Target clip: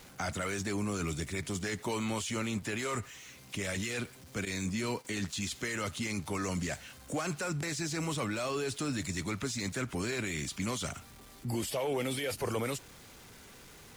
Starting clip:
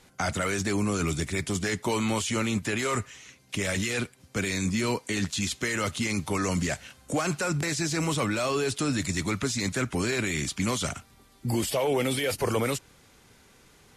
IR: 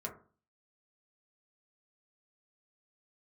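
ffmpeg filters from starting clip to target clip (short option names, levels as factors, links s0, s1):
-filter_complex "[0:a]aeval=exprs='val(0)+0.5*0.00794*sgn(val(0))':c=same,asettb=1/sr,asplit=3[s0][s1][s2];[s0]atrim=end=4.454[s3];[s1]atrim=start=4.45:end=5.05,asetpts=PTS-STARTPTS,afade=t=in:d=0.004:c=qsin,afade=t=out:st=0.596:d=0.004:c=qsin,agate=range=0.251:threshold=0.0282:ratio=16:detection=peak[s4];[s2]atrim=start=5.046[s5];[s3][s4]acrossfade=d=0.004:c1=hsin:c2=qsin[s6];[s6][s5]acrossfade=d=0.004:c1=qsin:c2=hsin,volume=0.422"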